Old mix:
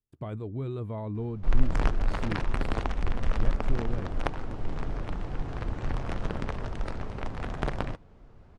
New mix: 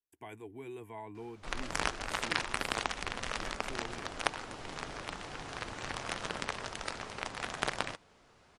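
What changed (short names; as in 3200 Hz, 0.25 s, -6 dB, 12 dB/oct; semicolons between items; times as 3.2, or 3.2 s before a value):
speech: add fixed phaser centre 840 Hz, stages 8; master: add tilt +4.5 dB/oct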